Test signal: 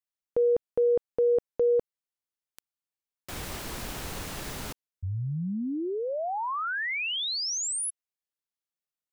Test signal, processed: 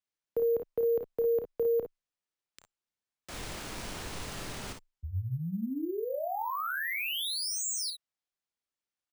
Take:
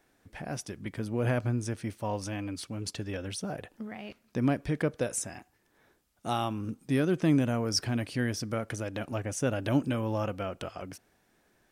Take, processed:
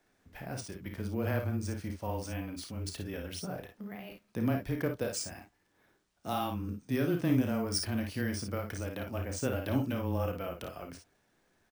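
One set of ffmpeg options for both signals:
-af "afreqshift=-14,aecho=1:1:31|54|64:0.376|0.447|0.251,acrusher=samples=3:mix=1:aa=0.000001,volume=-4.5dB"

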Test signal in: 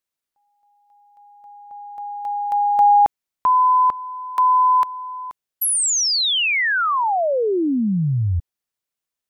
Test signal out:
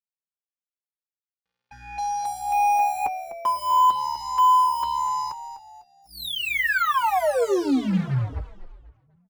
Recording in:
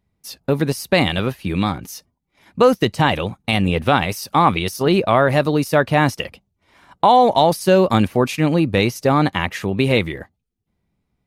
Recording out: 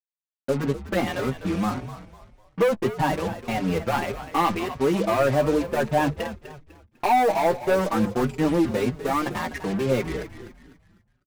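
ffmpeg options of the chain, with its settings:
-filter_complex "[0:a]lowpass=1.6k,anlmdn=2.51,highpass=79,lowshelf=f=120:g=-9.5,bandreject=f=50:t=h:w=6,bandreject=f=100:t=h:w=6,bandreject=f=150:t=h:w=6,bandreject=f=200:t=h:w=6,asplit=2[a][b];[b]acompressor=threshold=-22dB:ratio=20:attack=0.14:release=297:knee=1:detection=rms,volume=-2.5dB[c];[a][c]amix=inputs=2:normalize=0,aeval=exprs='val(0)+0.00355*(sin(2*PI*60*n/s)+sin(2*PI*2*60*n/s)/2+sin(2*PI*3*60*n/s)/3+sin(2*PI*4*60*n/s)/4+sin(2*PI*5*60*n/s)/5)':c=same,asoftclip=type=tanh:threshold=-14dB,acrusher=bits=4:mix=0:aa=0.5,asplit=2[d][e];[e]adelay=15,volume=-13.5dB[f];[d][f]amix=inputs=2:normalize=0,asplit=2[g][h];[h]asplit=4[i][j][k][l];[i]adelay=250,afreqshift=-73,volume=-12dB[m];[j]adelay=500,afreqshift=-146,volume=-20.6dB[n];[k]adelay=750,afreqshift=-219,volume=-29.3dB[o];[l]adelay=1000,afreqshift=-292,volume=-37.9dB[p];[m][n][o][p]amix=inputs=4:normalize=0[q];[g][q]amix=inputs=2:normalize=0,asplit=2[r][s];[s]adelay=5.1,afreqshift=1.7[t];[r][t]amix=inputs=2:normalize=1"

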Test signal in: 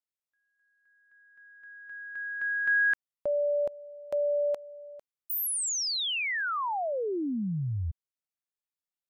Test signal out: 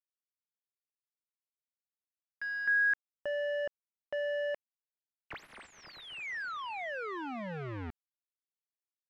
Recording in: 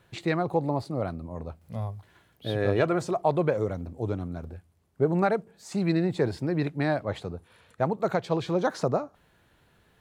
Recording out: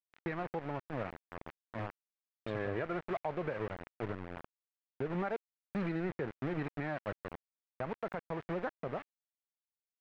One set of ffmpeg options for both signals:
-af "aeval=exprs='val(0)*gte(abs(val(0)),0.0376)':c=same,alimiter=limit=-20.5dB:level=0:latency=1:release=221,lowpass=f=2k:t=q:w=1.5,volume=-6.5dB"

